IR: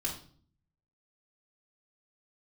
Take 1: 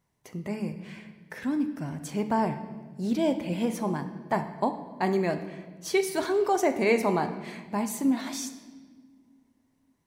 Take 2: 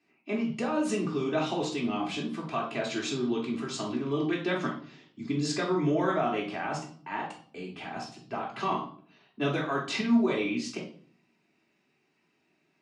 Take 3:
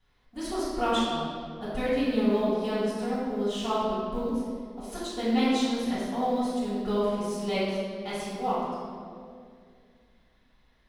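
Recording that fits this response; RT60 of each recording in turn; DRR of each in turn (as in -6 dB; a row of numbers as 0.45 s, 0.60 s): 2; no single decay rate, 0.50 s, 2.2 s; 7.5 dB, -4.0 dB, -13.5 dB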